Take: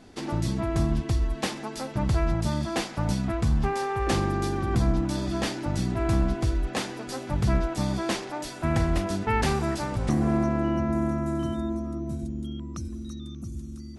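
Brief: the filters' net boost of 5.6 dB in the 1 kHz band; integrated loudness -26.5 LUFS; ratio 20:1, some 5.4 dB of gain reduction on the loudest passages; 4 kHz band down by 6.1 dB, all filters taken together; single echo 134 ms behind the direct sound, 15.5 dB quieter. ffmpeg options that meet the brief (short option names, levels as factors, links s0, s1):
-af "equalizer=f=1000:t=o:g=7.5,equalizer=f=4000:t=o:g=-8.5,acompressor=threshold=0.0708:ratio=20,aecho=1:1:134:0.168,volume=1.5"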